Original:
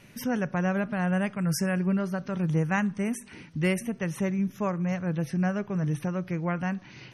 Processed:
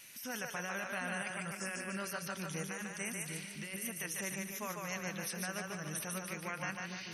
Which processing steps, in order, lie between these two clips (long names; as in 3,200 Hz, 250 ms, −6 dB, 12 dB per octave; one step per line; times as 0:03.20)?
first-order pre-emphasis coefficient 0.97
compressor whose output falls as the input rises −48 dBFS, ratio −1
echo with a time of its own for lows and highs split 400 Hz, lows 756 ms, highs 147 ms, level −3 dB
level +6.5 dB